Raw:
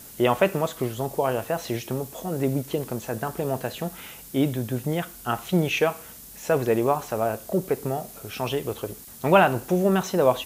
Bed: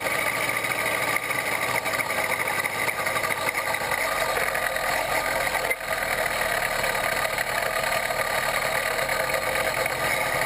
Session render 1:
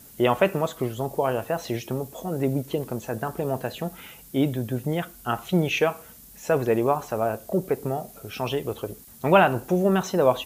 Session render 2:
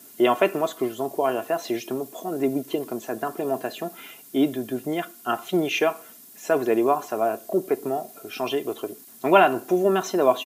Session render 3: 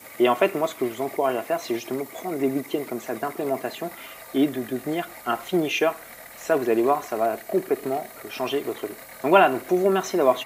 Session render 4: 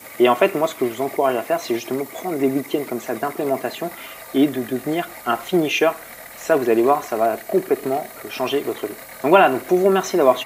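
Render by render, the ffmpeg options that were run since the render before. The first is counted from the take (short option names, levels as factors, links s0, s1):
-af "afftdn=nr=6:nf=-44"
-af "highpass=f=170:w=0.5412,highpass=f=170:w=1.3066,aecho=1:1:2.9:0.57"
-filter_complex "[1:a]volume=0.106[s0];[0:a][s0]amix=inputs=2:normalize=0"
-af "volume=1.68,alimiter=limit=0.891:level=0:latency=1"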